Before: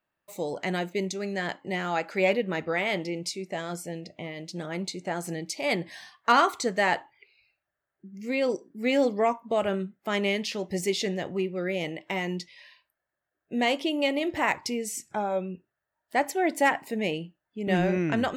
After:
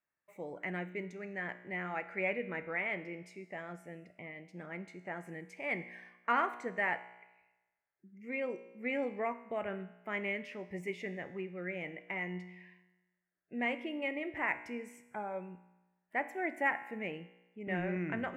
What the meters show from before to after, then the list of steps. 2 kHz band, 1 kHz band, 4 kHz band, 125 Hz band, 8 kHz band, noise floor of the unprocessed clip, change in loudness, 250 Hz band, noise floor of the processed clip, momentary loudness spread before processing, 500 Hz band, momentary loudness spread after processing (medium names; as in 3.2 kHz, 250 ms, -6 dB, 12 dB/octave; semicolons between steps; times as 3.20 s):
-6.0 dB, -10.5 dB, -19.5 dB, -11.0 dB, under -25 dB, -85 dBFS, -10.0 dB, -11.5 dB, -85 dBFS, 12 LU, -12.0 dB, 14 LU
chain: resonant high shelf 3 kHz -12 dB, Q 3; feedback comb 60 Hz, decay 1.1 s, harmonics all, mix 60%; trim -5.5 dB